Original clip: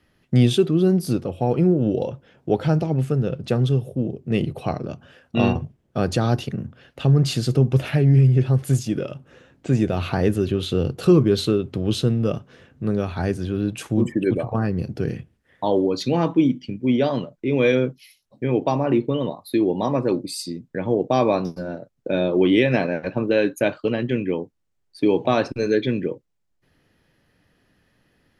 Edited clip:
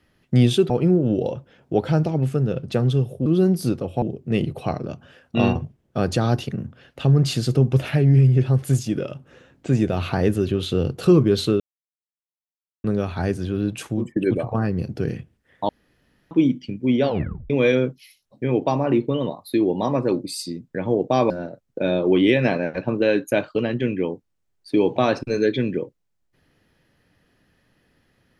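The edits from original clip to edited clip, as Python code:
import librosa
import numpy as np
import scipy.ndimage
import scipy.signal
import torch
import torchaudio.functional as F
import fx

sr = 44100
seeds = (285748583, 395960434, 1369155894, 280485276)

y = fx.edit(x, sr, fx.move(start_s=0.7, length_s=0.76, to_s=4.02),
    fx.silence(start_s=11.6, length_s=1.24),
    fx.fade_out_to(start_s=13.84, length_s=0.32, floor_db=-23.0),
    fx.room_tone_fill(start_s=15.69, length_s=0.62),
    fx.tape_stop(start_s=17.04, length_s=0.46),
    fx.cut(start_s=21.3, length_s=0.29), tone=tone)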